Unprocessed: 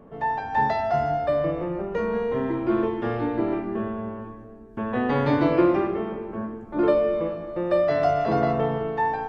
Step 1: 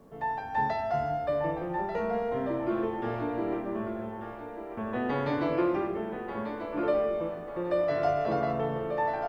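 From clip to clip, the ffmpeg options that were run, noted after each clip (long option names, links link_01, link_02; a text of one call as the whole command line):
ffmpeg -i in.wav -filter_complex "[0:a]acrossover=split=360[link_01][link_02];[link_01]alimiter=limit=-22.5dB:level=0:latency=1[link_03];[link_02]asplit=2[link_04][link_05];[link_05]adelay=1190,lowpass=frequency=2700:poles=1,volume=-5.5dB,asplit=2[link_06][link_07];[link_07]adelay=1190,lowpass=frequency=2700:poles=1,volume=0.43,asplit=2[link_08][link_09];[link_09]adelay=1190,lowpass=frequency=2700:poles=1,volume=0.43,asplit=2[link_10][link_11];[link_11]adelay=1190,lowpass=frequency=2700:poles=1,volume=0.43,asplit=2[link_12][link_13];[link_13]adelay=1190,lowpass=frequency=2700:poles=1,volume=0.43[link_14];[link_04][link_06][link_08][link_10][link_12][link_14]amix=inputs=6:normalize=0[link_15];[link_03][link_15]amix=inputs=2:normalize=0,acrusher=bits=10:mix=0:aa=0.000001,volume=-6dB" out.wav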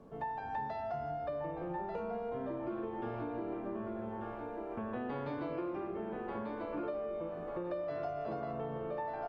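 ffmpeg -i in.wav -af "aemphasis=mode=reproduction:type=50kf,bandreject=frequency=1900:width=8.4,acompressor=threshold=-35dB:ratio=6,volume=-1dB" out.wav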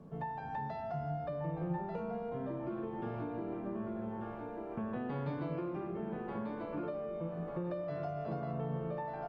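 ffmpeg -i in.wav -af "equalizer=frequency=160:width_type=o:width=0.61:gain=14,volume=-2dB" out.wav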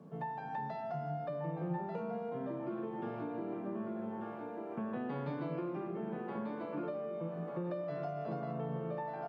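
ffmpeg -i in.wav -af "highpass=frequency=140:width=0.5412,highpass=frequency=140:width=1.3066" out.wav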